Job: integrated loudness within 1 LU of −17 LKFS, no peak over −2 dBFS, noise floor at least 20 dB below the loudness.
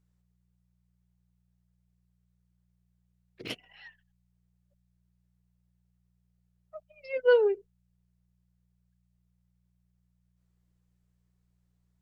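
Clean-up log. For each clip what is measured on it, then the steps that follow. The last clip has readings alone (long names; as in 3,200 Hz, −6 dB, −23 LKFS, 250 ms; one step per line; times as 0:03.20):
number of dropouts 1; longest dropout 1.2 ms; mains hum 60 Hz; hum harmonics up to 180 Hz; level of the hum −69 dBFS; integrated loudness −26.0 LKFS; sample peak −12.0 dBFS; target loudness −17.0 LKFS
→ repair the gap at 0:03.48, 1.2 ms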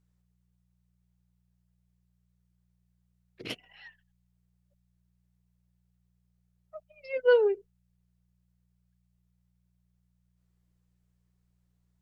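number of dropouts 0; mains hum 60 Hz; hum harmonics up to 180 Hz; level of the hum −69 dBFS
→ hum removal 60 Hz, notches 3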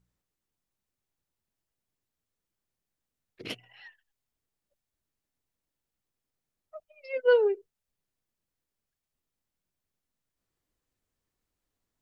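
mains hum none found; integrated loudness −26.0 LKFS; sample peak −12.0 dBFS; target loudness −17.0 LKFS
→ level +9 dB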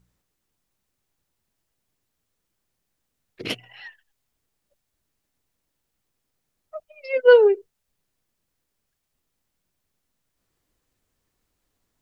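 integrated loudness −17.0 LKFS; sample peak −3.0 dBFS; background noise floor −79 dBFS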